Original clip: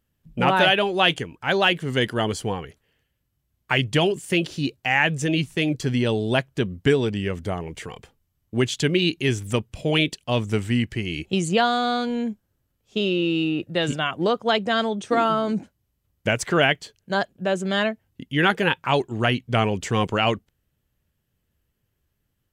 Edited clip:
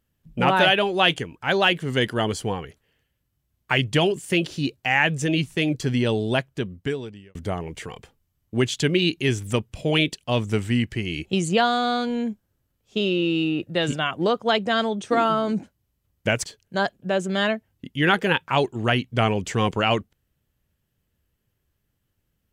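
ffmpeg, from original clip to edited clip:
-filter_complex "[0:a]asplit=3[a][b][c];[a]atrim=end=7.35,asetpts=PTS-STARTPTS,afade=t=out:st=6.2:d=1.15[d];[b]atrim=start=7.35:end=16.442,asetpts=PTS-STARTPTS,afade=t=in:d=0.004:c=hsin[e];[c]atrim=start=16.798[f];[d][e]concat=n=2:v=0:a=1[g];[g][f]acrossfade=d=0.004:c1=hsin:c2=hsin"

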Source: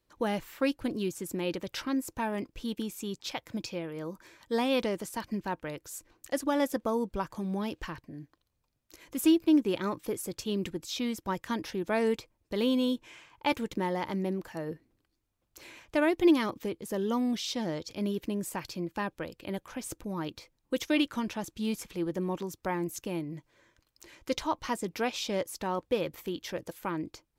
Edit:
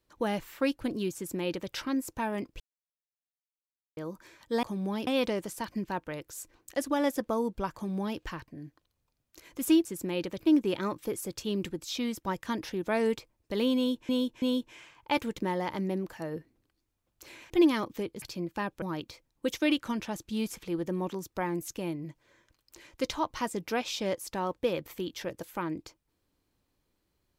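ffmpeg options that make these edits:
-filter_complex "[0:a]asplit=12[a][b][c][d][e][f][g][h][i][j][k][l];[a]atrim=end=2.6,asetpts=PTS-STARTPTS,afade=t=out:st=2.596:d=0.004:c=hsin[m];[b]atrim=start=2.6:end=3.97,asetpts=PTS-STARTPTS,volume=0[n];[c]atrim=start=3.97:end=4.632,asetpts=PTS-STARTPTS,afade=t=in:d=0.004:c=hsin[o];[d]atrim=start=7.308:end=7.752[p];[e]atrim=start=4.628:end=9.412[q];[f]atrim=start=1.148:end=1.702[r];[g]atrim=start=9.408:end=13.102[s];[h]atrim=start=12.768:end=13.102[t];[i]atrim=start=12.768:end=15.852[u];[j]atrim=start=16.158:end=16.882[v];[k]atrim=start=18.618:end=19.222[w];[l]atrim=start=20.098[x];[m][n][o]concat=n=3:v=0:a=1[y];[y][p]acrossfade=d=0.004:c1=hsin:c2=hsin[z];[z][q]acrossfade=d=0.004:c1=hsin:c2=hsin[aa];[aa][r]acrossfade=d=0.004:c1=hsin:c2=hsin[ab];[ab][s]acrossfade=d=0.004:c1=hsin:c2=hsin[ac];[ac][t]acrossfade=d=0.004:c1=hsin:c2=hsin[ad];[ad][u]acrossfade=d=0.004:c1=hsin:c2=hsin[ae];[ae][v]acrossfade=d=0.004:c1=hsin:c2=hsin[af];[af][w]acrossfade=d=0.004:c1=hsin:c2=hsin[ag];[ag][x]acrossfade=d=0.004:c1=hsin:c2=hsin"

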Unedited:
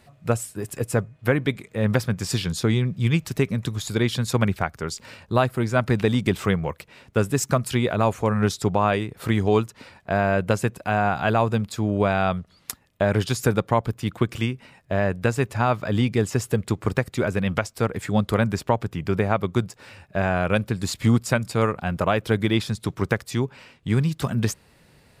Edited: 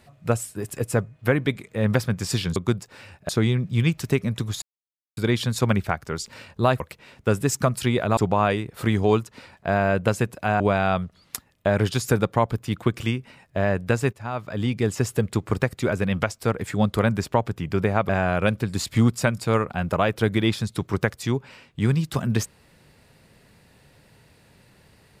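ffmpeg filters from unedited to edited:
-filter_complex "[0:a]asplit=9[a][b][c][d][e][f][g][h][i];[a]atrim=end=2.562[j];[b]atrim=start=19.438:end=20.172[k];[c]atrim=start=2.558:end=3.89,asetpts=PTS-STARTPTS,afade=t=out:st=1.328:d=0.004:c=hsin,apad=pad_dur=0.55[l];[d]atrim=start=3.89:end=5.522,asetpts=PTS-STARTPTS,afade=t=in:d=0.004:c=hsin[m];[e]atrim=start=6.688:end=8.062[n];[f]atrim=start=8.598:end=11.032[o];[g]atrim=start=11.948:end=15.48,asetpts=PTS-STARTPTS,afade=t=out:st=3.528:d=0.004:c=hsin:silence=0.188365[p];[h]atrim=start=15.48:end=19.442,asetpts=PTS-STARTPTS,afade=t=in:d=0.87:silence=0.188365[q];[i]atrim=start=20.168[r];[j][k]acrossfade=d=0.004:c1=hsin:c2=hsin[s];[l][m]concat=n=2:v=0:a=1[t];[s][t]acrossfade=d=0.004:c1=hsin:c2=hsin[u];[u][n]acrossfade=d=0.004:c1=hsin:c2=hsin[v];[v][o]acrossfade=d=0.004:c1=hsin:c2=hsin[w];[p][q]concat=n=2:v=0:a=1[x];[w][x]acrossfade=d=0.004:c1=hsin:c2=hsin[y];[y][r]acrossfade=d=0.004:c1=hsin:c2=hsin"

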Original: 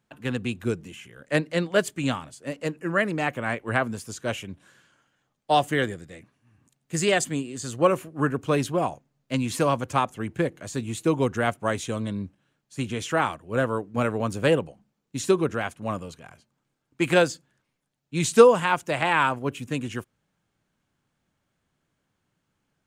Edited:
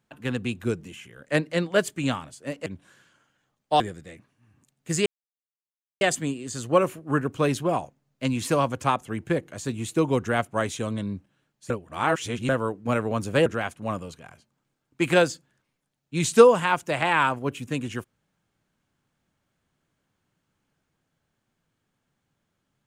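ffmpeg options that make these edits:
-filter_complex "[0:a]asplit=7[a][b][c][d][e][f][g];[a]atrim=end=2.662[h];[b]atrim=start=4.438:end=5.582[i];[c]atrim=start=5.838:end=7.1,asetpts=PTS-STARTPTS,afade=t=out:st=1.258:d=0.004:c=hsin,apad=pad_dur=0.95[j];[d]atrim=start=7.1:end=12.792,asetpts=PTS-STARTPTS,afade=t=in:d=0.004:c=hsin[k];[e]atrim=start=12.788:end=13.582,asetpts=PTS-STARTPTS,areverse[l];[f]atrim=start=13.578:end=14.552[m];[g]atrim=start=15.458[n];[h][i]acrossfade=d=0.004:c1=hsin:c2=hsin[o];[j][k]concat=n=2:v=0:a=1[p];[o][p]acrossfade=d=0.004:c1=hsin:c2=hsin[q];[q][l]acrossfade=d=0.004:c1=hsin:c2=hsin[r];[r][m]acrossfade=d=0.004:c1=hsin:c2=hsin[s];[s][n]acrossfade=d=0.004:c1=hsin:c2=hsin"

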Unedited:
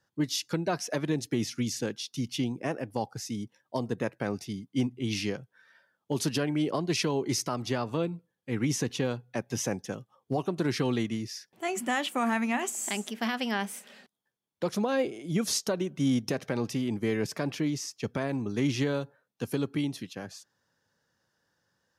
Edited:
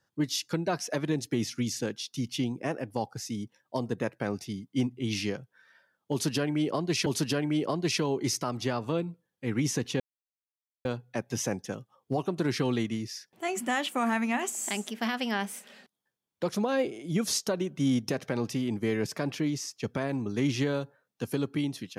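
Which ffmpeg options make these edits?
-filter_complex "[0:a]asplit=3[a][b][c];[a]atrim=end=7.062[d];[b]atrim=start=6.108:end=9.05,asetpts=PTS-STARTPTS,afade=t=out:st=2.938:d=0.004:c=hsin,apad=pad_dur=0.85[e];[c]atrim=start=9.05,asetpts=PTS-STARTPTS,afade=t=in:d=0.004:c=hsin[f];[e][f]concat=n=2:v=0:a=1[g];[d][g]acrossfade=d=0.004:c1=hsin:c2=hsin"

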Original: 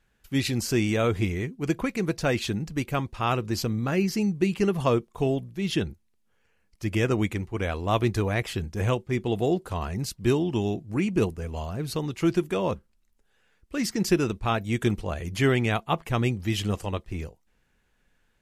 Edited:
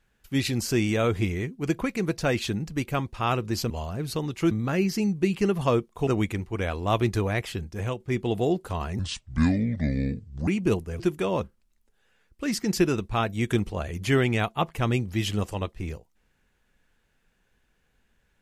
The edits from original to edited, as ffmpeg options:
-filter_complex "[0:a]asplit=8[a][b][c][d][e][f][g][h];[a]atrim=end=3.702[i];[b]atrim=start=11.498:end=12.312[j];[c]atrim=start=3.698:end=5.262[k];[d]atrim=start=7.078:end=9.01,asetpts=PTS-STARTPTS,afade=t=out:st=1.182:d=0.75:silence=0.473151[l];[e]atrim=start=9.01:end=10.004,asetpts=PTS-STARTPTS,afade=t=in:d=0.004:c=hsin:silence=0.473151[m];[f]atrim=start=10:end=10.98,asetpts=PTS-STARTPTS,asetrate=29106,aresample=44100[n];[g]atrim=start=10.976:end=11.502[o];[h]atrim=start=12.308[p];[i][j]acrossfade=d=0.004:c1=hsin:c2=hsin[q];[q][k]acrossfade=d=0.004:c1=hsin:c2=hsin[r];[l][m]concat=n=2:v=0:a=1[s];[r][s]acrossfade=d=0.004:c1=hsin:c2=hsin[t];[t][n]acrossfade=d=0.004:c1=hsin:c2=hsin[u];[u][o]acrossfade=d=0.004:c1=hsin:c2=hsin[v];[v][p]acrossfade=d=0.004:c1=hsin:c2=hsin"

